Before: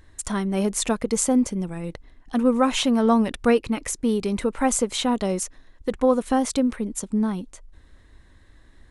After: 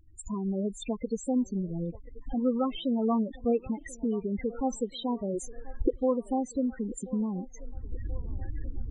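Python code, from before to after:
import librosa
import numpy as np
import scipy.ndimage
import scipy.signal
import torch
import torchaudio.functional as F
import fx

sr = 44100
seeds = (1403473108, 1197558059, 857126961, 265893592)

y = fx.cvsd(x, sr, bps=64000)
y = fx.recorder_agc(y, sr, target_db=-16.0, rise_db_per_s=38.0, max_gain_db=30)
y = fx.comb(y, sr, ms=2.4, depth=0.95, at=(5.34, 5.98))
y = fx.spec_topn(y, sr, count=8)
y = fx.echo_wet_bandpass(y, sr, ms=1033, feedback_pct=54, hz=650.0, wet_db=-18)
y = y * 10.0 ** (-7.5 / 20.0)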